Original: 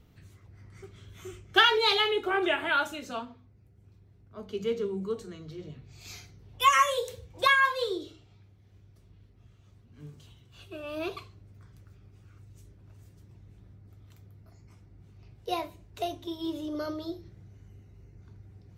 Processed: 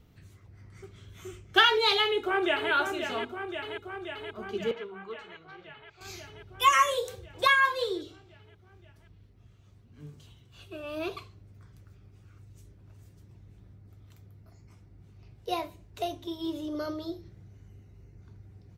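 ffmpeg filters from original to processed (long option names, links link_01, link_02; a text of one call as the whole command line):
ffmpeg -i in.wav -filter_complex "[0:a]asplit=2[link_01][link_02];[link_02]afade=type=in:start_time=2.03:duration=0.01,afade=type=out:start_time=2.71:duration=0.01,aecho=0:1:530|1060|1590|2120|2650|3180|3710|4240|4770|5300|5830|6360:0.446684|0.335013|0.25126|0.188445|0.141333|0.106|0.0795001|0.0596251|0.0447188|0.0335391|0.0251543|0.0188657[link_03];[link_01][link_03]amix=inputs=2:normalize=0,asettb=1/sr,asplit=3[link_04][link_05][link_06];[link_04]atrim=end=4.714[link_07];[link_05]atrim=start=4.71:end=6.01,asetpts=PTS-STARTPTS,afade=type=in:duration=0.004:curve=qsin,afade=type=out:start_time=1.296:duration=0.004:curve=qsin,acrossover=split=590 3700:gain=0.178 1 0.0891[link_08][link_09][link_10];[link_08][link_09][link_10]amix=inputs=3:normalize=0[link_11];[link_06]atrim=start=6.006[link_12];[link_07][link_11]acrossfade=duration=0.004:curve1=hsin:curve2=qsin[link_13];[link_13][link_12]acrossfade=duration=0.004:curve1=qsin:curve2=hsin" out.wav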